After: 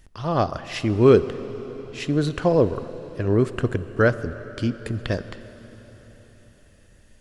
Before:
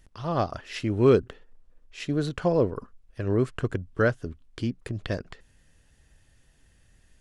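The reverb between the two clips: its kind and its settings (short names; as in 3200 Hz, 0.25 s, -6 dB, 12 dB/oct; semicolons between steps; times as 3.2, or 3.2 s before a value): plate-style reverb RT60 4.7 s, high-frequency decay 0.95×, DRR 12.5 dB; gain +4.5 dB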